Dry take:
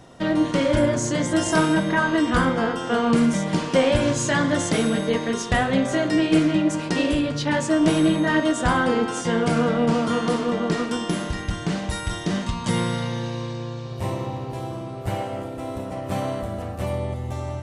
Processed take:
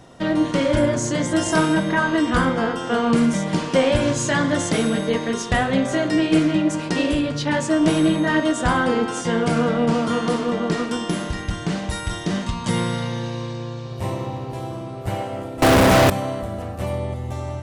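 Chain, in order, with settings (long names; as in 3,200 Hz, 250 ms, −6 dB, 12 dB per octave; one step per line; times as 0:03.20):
0:15.62–0:16.10: fuzz pedal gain 48 dB, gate −53 dBFS
level +1 dB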